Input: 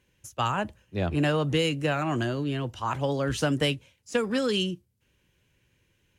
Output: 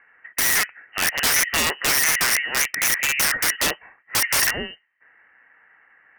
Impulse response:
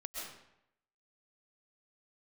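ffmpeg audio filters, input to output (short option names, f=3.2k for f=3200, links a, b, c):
-filter_complex "[0:a]highpass=f=1.3k:t=q:w=13,lowpass=f=2.7k:t=q:w=0.5098,lowpass=f=2.7k:t=q:w=0.6013,lowpass=f=2.7k:t=q:w=0.9,lowpass=f=2.7k:t=q:w=2.563,afreqshift=-3200,acrossover=split=1800[a][b];[b]aeval=exprs='0.398*sin(PI/2*2.82*val(0)/0.398)':c=same[c];[a][c]amix=inputs=2:normalize=0,acompressor=threshold=-16dB:ratio=20,aeval=exprs='(mod(10*val(0)+1,2)-1)/10':c=same,volume=6.5dB" -ar 48000 -c:a libmp3lame -b:a 256k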